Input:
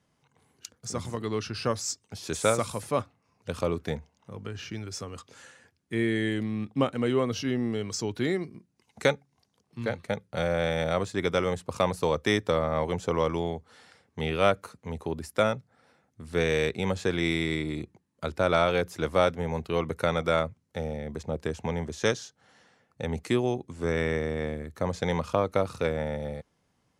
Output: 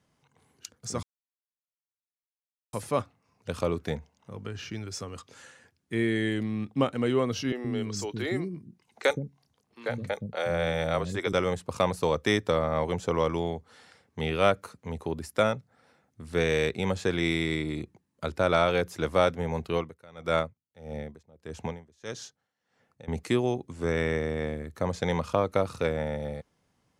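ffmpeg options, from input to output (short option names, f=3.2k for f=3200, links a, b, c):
-filter_complex "[0:a]asettb=1/sr,asplit=3[a][b][c];[a]atrim=end=7.524[d];[b]atrim=start=7.52:end=11.33,asetpts=PTS-STARTPTS,afade=t=in:d=0.004:c=qsin,afade=t=out:st=3.806:d=0.004:c=qsin,acrossover=split=310|5800[e][f][g];[g]adelay=30[h];[e]adelay=120[i];[i][f][h]amix=inputs=3:normalize=0,atrim=end_sample=168021[j];[c]atrim=start=11.326[k];[d][j]acrossfade=d=0.004:c1=hsin:c2=qsin[l];[l][k]acrossfade=d=0.004:c1=qsin:c2=hsin,asettb=1/sr,asplit=3[m][n][o];[m]atrim=end=19.744[p];[n]atrim=start=19.74:end=23.08,asetpts=PTS-STARTPTS,afade=t=in:d=0.004:c=qsin,afade=t=out:st=3.336:d=0.004:c=qsin,aeval=exprs='val(0)*pow(10,-26*(0.5-0.5*cos(2*PI*1.6*n/s))/20)':c=same[q];[o]atrim=start=23.076[r];[p][q]acrossfade=d=0.004:c1=hsin:c2=qsin[s];[s][r]acrossfade=d=0.004:c1=qsin:c2=hsin,asplit=3[t][u][v];[t]atrim=end=1.03,asetpts=PTS-STARTPTS,afade=t=out:st=1.026:d=0.004:c=hsin[w];[u]atrim=start=1.03:end=2.73,asetpts=PTS-STARTPTS,volume=0[x];[v]atrim=start=2.73,asetpts=PTS-STARTPTS,afade=t=in:d=0.004:c=hsin[y];[w][x][y]concat=n=3:v=0:a=1"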